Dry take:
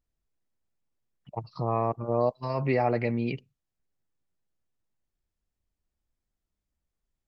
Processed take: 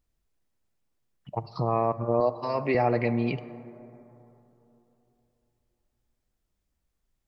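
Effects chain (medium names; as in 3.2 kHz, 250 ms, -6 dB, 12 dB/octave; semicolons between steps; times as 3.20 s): 2.20–2.75 s: high-pass 250 Hz 12 dB/octave; in parallel at -2 dB: compression, threshold -34 dBFS, peak gain reduction 13 dB; on the sum: plate-style reverb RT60 3.3 s, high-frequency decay 0.3×, DRR 14 dB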